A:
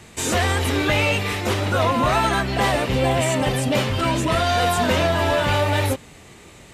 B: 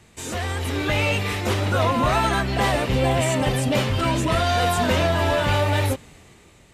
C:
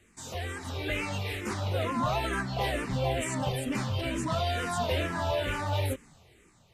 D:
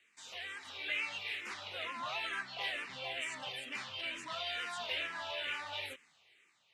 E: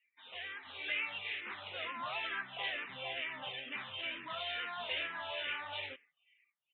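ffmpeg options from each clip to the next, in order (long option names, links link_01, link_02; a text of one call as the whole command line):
ffmpeg -i in.wav -af "lowshelf=frequency=110:gain=4.5,dynaudnorm=framelen=180:gausssize=9:maxgain=11.5dB,volume=-9dB" out.wav
ffmpeg -i in.wav -filter_complex "[0:a]asplit=2[link_01][link_02];[link_02]afreqshift=-2.2[link_03];[link_01][link_03]amix=inputs=2:normalize=1,volume=-6.5dB" out.wav
ffmpeg -i in.wav -af "bandpass=frequency=2700:width_type=q:width=1.4:csg=0" out.wav
ffmpeg -i in.wav -af "aresample=8000,aresample=44100,afftdn=noise_reduction=25:noise_floor=-62" out.wav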